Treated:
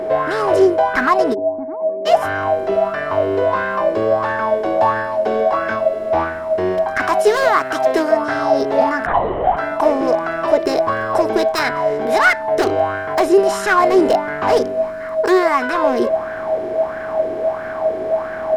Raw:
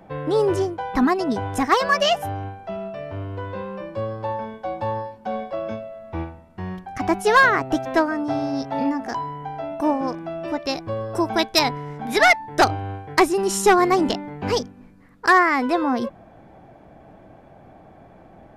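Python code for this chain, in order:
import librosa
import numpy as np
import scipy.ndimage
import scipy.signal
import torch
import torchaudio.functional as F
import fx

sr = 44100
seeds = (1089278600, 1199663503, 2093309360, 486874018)

p1 = fx.bin_compress(x, sr, power=0.6)
p2 = fx.tilt_eq(p1, sr, slope=1.5, at=(7.02, 8.11))
p3 = fx.rider(p2, sr, range_db=3, speed_s=0.5)
p4 = p2 + (p3 * librosa.db_to_amplitude(1.0))
p5 = fx.formant_cascade(p4, sr, vowel='u', at=(1.33, 2.05), fade=0.02)
p6 = np.clip(p5, -10.0 ** (-5.5 / 20.0), 10.0 ** (-5.5 / 20.0))
p7 = p6 + 10.0 ** (-14.0 / 20.0) * np.sin(2.0 * np.pi * 640.0 * np.arange(len(p6)) / sr)
p8 = fx.lpc_vocoder(p7, sr, seeds[0], excitation='whisper', order=10, at=(9.06, 9.57))
p9 = fx.bell_lfo(p8, sr, hz=1.5, low_hz=380.0, high_hz=1600.0, db=16)
y = p9 * librosa.db_to_amplitude(-12.5)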